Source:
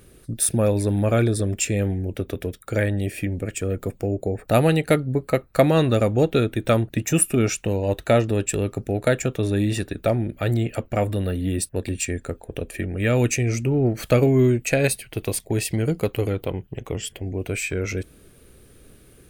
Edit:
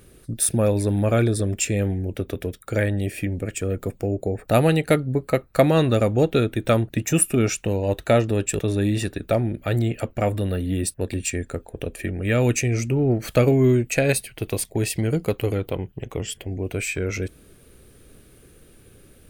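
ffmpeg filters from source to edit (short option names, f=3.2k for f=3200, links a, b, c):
-filter_complex "[0:a]asplit=2[a][b];[a]atrim=end=8.592[c];[b]atrim=start=9.338[d];[c][d]acrossfade=d=0.004:c1=hsin:c2=hsin"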